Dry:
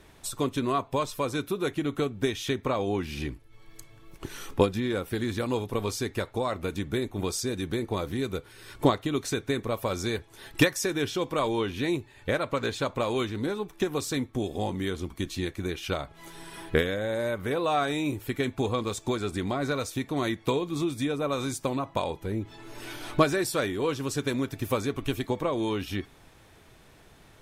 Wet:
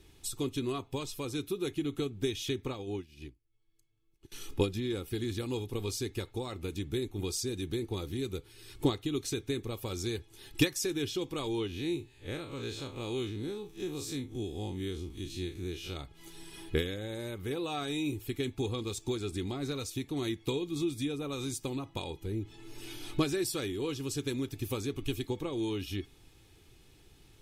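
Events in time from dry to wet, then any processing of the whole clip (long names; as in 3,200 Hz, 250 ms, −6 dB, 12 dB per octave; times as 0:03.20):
0:02.69–0:04.32: expander for the loud parts 2.5 to 1, over −40 dBFS
0:11.67–0:15.96: spectrum smeared in time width 81 ms
whole clip: flat-topped bell 950 Hz −9.5 dB 2.4 octaves; comb filter 2.4 ms, depth 41%; level −3.5 dB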